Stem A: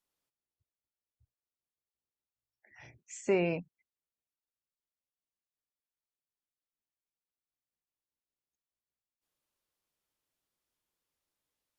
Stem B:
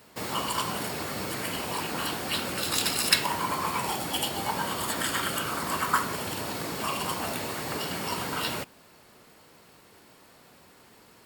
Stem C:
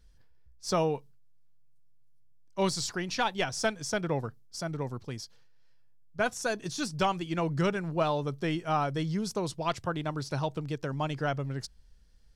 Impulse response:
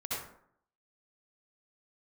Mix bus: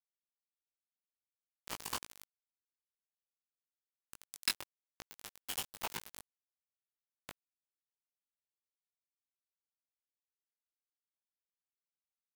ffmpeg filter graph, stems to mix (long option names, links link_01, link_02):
-filter_complex "[0:a]adelay=1600,volume=-17.5dB,asplit=2[link_01][link_02];[link_02]volume=-7.5dB[link_03];[1:a]adelay=1350,volume=-1.5dB[link_04];[2:a]acompressor=mode=upward:threshold=-39dB:ratio=2.5,volume=-18dB,asplit=3[link_05][link_06][link_07];[link_06]volume=-6.5dB[link_08];[link_07]apad=whole_len=555734[link_09];[link_04][link_09]sidechaincompress=threshold=-51dB:ratio=20:attack=16:release=1030[link_10];[3:a]atrim=start_sample=2205[link_11];[link_03][link_08]amix=inputs=2:normalize=0[link_12];[link_12][link_11]afir=irnorm=-1:irlink=0[link_13];[link_01][link_10][link_05][link_13]amix=inputs=4:normalize=0,aeval=exprs='val(0)*gte(abs(val(0)),0.0708)':channel_layout=same,flanger=delay=18:depth=2.7:speed=1"